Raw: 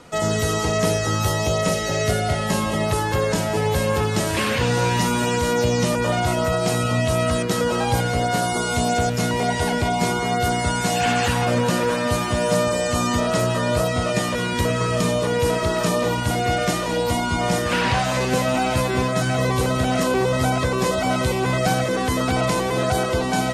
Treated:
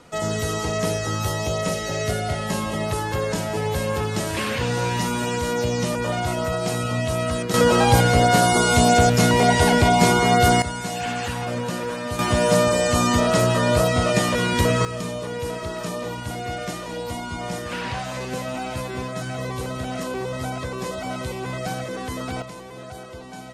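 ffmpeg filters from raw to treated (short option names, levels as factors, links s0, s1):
-af "asetnsamples=n=441:p=0,asendcmd='7.54 volume volume 5dB;10.62 volume volume -7dB;12.19 volume volume 2dB;14.85 volume volume -8.5dB;22.42 volume volume -17dB',volume=0.668"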